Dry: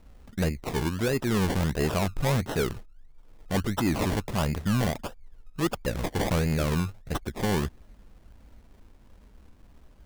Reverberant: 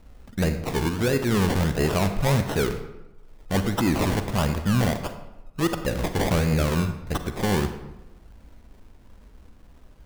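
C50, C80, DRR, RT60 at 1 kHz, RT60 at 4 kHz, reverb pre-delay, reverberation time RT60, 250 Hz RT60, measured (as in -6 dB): 9.0 dB, 11.0 dB, 8.0 dB, 1.0 s, 0.65 s, 37 ms, 1.0 s, 1.0 s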